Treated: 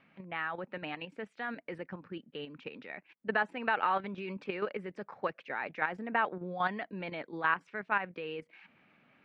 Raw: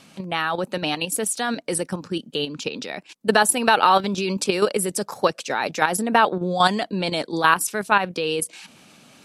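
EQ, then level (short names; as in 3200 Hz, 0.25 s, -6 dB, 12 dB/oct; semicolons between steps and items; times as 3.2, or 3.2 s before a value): ladder low-pass 2400 Hz, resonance 50%; -6.0 dB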